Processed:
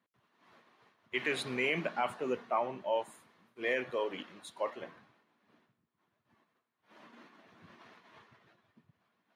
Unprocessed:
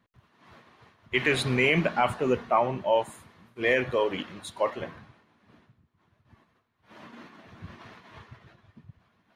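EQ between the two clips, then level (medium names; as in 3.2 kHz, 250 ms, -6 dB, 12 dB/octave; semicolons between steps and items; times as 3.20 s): high-pass 220 Hz 12 dB/octave; -8.5 dB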